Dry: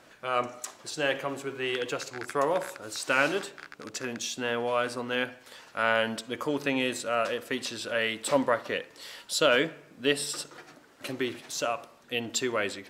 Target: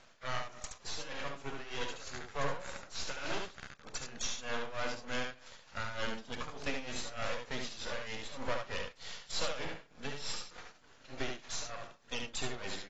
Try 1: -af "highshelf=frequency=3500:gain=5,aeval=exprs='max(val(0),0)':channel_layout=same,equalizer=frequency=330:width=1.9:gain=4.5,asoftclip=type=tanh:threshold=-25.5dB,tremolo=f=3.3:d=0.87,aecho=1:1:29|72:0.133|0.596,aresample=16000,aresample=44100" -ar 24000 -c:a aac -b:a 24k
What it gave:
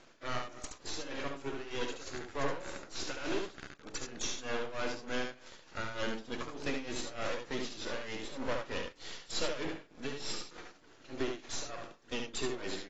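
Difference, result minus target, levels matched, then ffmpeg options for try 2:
250 Hz band +4.5 dB
-af "highshelf=frequency=3500:gain=5,aeval=exprs='max(val(0),0)':channel_layout=same,equalizer=frequency=330:width=1.9:gain=-7,asoftclip=type=tanh:threshold=-25.5dB,tremolo=f=3.3:d=0.87,aecho=1:1:29|72:0.133|0.596,aresample=16000,aresample=44100" -ar 24000 -c:a aac -b:a 24k

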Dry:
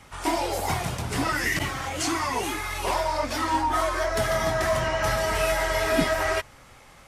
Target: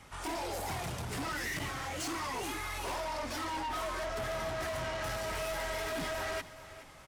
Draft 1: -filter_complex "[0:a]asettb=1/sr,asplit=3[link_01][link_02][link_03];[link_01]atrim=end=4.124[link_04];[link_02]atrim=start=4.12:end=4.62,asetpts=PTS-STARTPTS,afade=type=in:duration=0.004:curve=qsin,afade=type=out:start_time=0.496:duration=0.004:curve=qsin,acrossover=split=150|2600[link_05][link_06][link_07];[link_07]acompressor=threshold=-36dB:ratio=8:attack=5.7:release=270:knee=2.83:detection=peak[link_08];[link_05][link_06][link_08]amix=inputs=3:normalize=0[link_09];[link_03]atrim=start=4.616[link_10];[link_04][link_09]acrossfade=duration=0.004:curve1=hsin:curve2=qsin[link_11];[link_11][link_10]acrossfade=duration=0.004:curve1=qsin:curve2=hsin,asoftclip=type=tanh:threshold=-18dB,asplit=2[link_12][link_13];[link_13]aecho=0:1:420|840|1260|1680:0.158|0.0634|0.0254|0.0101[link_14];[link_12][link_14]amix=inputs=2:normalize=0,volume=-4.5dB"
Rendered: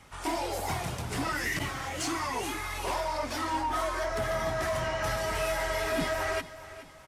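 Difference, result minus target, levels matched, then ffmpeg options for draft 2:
soft clipping: distortion −11 dB
-filter_complex "[0:a]asettb=1/sr,asplit=3[link_01][link_02][link_03];[link_01]atrim=end=4.124[link_04];[link_02]atrim=start=4.12:end=4.62,asetpts=PTS-STARTPTS,afade=type=in:duration=0.004:curve=qsin,afade=type=out:start_time=0.496:duration=0.004:curve=qsin,acrossover=split=150|2600[link_05][link_06][link_07];[link_07]acompressor=threshold=-36dB:ratio=8:attack=5.7:release=270:knee=2.83:detection=peak[link_08];[link_05][link_06][link_08]amix=inputs=3:normalize=0[link_09];[link_03]atrim=start=4.616[link_10];[link_04][link_09]acrossfade=duration=0.004:curve1=hsin:curve2=qsin[link_11];[link_11][link_10]acrossfade=duration=0.004:curve1=qsin:curve2=hsin,asoftclip=type=tanh:threshold=-29.5dB,asplit=2[link_12][link_13];[link_13]aecho=0:1:420|840|1260|1680:0.158|0.0634|0.0254|0.0101[link_14];[link_12][link_14]amix=inputs=2:normalize=0,volume=-4.5dB"

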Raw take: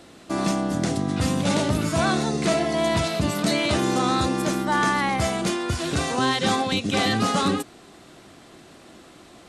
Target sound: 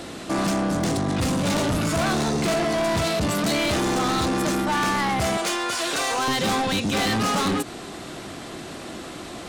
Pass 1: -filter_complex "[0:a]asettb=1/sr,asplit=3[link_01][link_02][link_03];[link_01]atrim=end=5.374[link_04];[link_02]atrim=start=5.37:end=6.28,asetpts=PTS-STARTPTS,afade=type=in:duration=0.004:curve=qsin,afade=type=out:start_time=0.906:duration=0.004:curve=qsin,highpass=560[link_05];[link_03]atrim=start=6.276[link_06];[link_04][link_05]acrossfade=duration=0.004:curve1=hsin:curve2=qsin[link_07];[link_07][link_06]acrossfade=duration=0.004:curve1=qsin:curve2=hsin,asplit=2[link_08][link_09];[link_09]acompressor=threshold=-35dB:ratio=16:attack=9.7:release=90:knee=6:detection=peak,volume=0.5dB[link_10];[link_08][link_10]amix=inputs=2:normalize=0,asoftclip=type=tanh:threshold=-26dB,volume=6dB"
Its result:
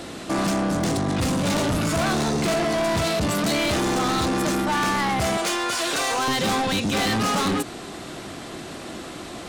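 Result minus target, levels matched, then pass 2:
downward compressor: peak gain reduction −6.5 dB
-filter_complex "[0:a]asettb=1/sr,asplit=3[link_01][link_02][link_03];[link_01]atrim=end=5.374[link_04];[link_02]atrim=start=5.37:end=6.28,asetpts=PTS-STARTPTS,afade=type=in:duration=0.004:curve=qsin,afade=type=out:start_time=0.906:duration=0.004:curve=qsin,highpass=560[link_05];[link_03]atrim=start=6.276[link_06];[link_04][link_05]acrossfade=duration=0.004:curve1=hsin:curve2=qsin[link_07];[link_07][link_06]acrossfade=duration=0.004:curve1=qsin:curve2=hsin,asplit=2[link_08][link_09];[link_09]acompressor=threshold=-42dB:ratio=16:attack=9.7:release=90:knee=6:detection=peak,volume=0.5dB[link_10];[link_08][link_10]amix=inputs=2:normalize=0,asoftclip=type=tanh:threshold=-26dB,volume=6dB"

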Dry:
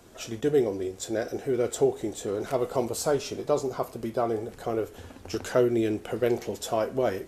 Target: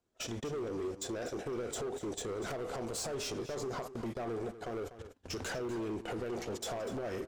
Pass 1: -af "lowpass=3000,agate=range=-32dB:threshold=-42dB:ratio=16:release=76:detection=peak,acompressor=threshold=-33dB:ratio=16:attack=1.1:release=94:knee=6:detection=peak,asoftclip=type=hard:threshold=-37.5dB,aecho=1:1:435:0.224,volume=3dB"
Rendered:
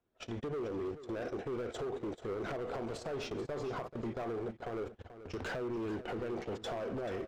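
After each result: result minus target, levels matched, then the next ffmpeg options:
echo 190 ms late; 8,000 Hz band −14.0 dB
-af "lowpass=3000,agate=range=-32dB:threshold=-42dB:ratio=16:release=76:detection=peak,acompressor=threshold=-33dB:ratio=16:attack=1.1:release=94:knee=6:detection=peak,asoftclip=type=hard:threshold=-37.5dB,aecho=1:1:245:0.224,volume=3dB"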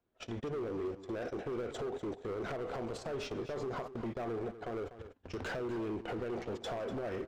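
8,000 Hz band −14.0 dB
-af "lowpass=8600,agate=range=-32dB:threshold=-42dB:ratio=16:release=76:detection=peak,acompressor=threshold=-33dB:ratio=16:attack=1.1:release=94:knee=6:detection=peak,asoftclip=type=hard:threshold=-37.5dB,aecho=1:1:245:0.224,volume=3dB"

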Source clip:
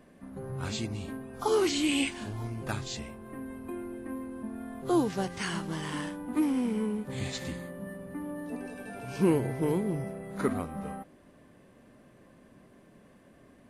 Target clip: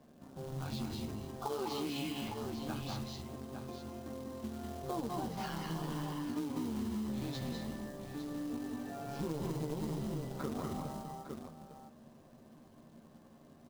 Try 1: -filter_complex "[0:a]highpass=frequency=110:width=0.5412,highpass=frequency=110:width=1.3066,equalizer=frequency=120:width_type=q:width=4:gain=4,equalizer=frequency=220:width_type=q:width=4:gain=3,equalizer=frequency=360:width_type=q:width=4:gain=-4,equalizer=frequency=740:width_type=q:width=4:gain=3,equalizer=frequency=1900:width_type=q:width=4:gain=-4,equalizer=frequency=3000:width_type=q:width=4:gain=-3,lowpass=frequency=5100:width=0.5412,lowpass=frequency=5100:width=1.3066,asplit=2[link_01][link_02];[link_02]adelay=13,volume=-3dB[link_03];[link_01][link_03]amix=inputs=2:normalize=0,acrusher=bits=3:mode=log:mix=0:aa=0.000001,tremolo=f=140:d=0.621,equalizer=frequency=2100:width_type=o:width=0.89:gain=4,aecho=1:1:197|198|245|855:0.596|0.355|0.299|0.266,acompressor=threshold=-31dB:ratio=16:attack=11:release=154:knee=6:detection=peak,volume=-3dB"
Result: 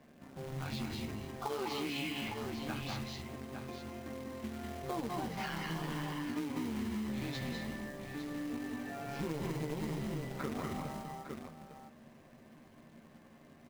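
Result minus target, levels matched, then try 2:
2,000 Hz band +6.5 dB
-filter_complex "[0:a]highpass=frequency=110:width=0.5412,highpass=frequency=110:width=1.3066,equalizer=frequency=120:width_type=q:width=4:gain=4,equalizer=frequency=220:width_type=q:width=4:gain=3,equalizer=frequency=360:width_type=q:width=4:gain=-4,equalizer=frequency=740:width_type=q:width=4:gain=3,equalizer=frequency=1900:width_type=q:width=4:gain=-4,equalizer=frequency=3000:width_type=q:width=4:gain=-3,lowpass=frequency=5100:width=0.5412,lowpass=frequency=5100:width=1.3066,asplit=2[link_01][link_02];[link_02]adelay=13,volume=-3dB[link_03];[link_01][link_03]amix=inputs=2:normalize=0,acrusher=bits=3:mode=log:mix=0:aa=0.000001,tremolo=f=140:d=0.621,equalizer=frequency=2100:width_type=o:width=0.89:gain=-6.5,aecho=1:1:197|198|245|855:0.596|0.355|0.299|0.266,acompressor=threshold=-31dB:ratio=16:attack=11:release=154:knee=6:detection=peak,volume=-3dB"

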